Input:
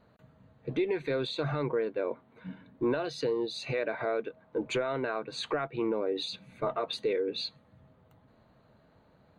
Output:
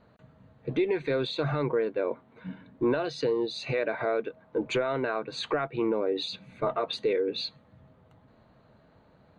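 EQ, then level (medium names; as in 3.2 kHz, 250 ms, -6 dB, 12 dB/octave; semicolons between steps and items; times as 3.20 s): Bessel low-pass 6.3 kHz; +3.0 dB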